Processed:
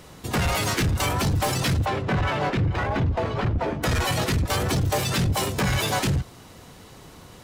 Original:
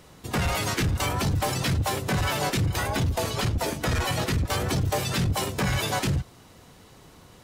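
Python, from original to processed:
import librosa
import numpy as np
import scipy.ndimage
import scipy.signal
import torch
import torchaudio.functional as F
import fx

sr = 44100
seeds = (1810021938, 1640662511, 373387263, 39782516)

p1 = fx.lowpass(x, sr, hz=fx.line((1.84, 2700.0), (3.82, 1600.0)), slope=12, at=(1.84, 3.82), fade=0.02)
p2 = np.clip(p1, -10.0 ** (-32.0 / 20.0), 10.0 ** (-32.0 / 20.0))
y = p1 + (p2 * 10.0 ** (-2.0 / 20.0))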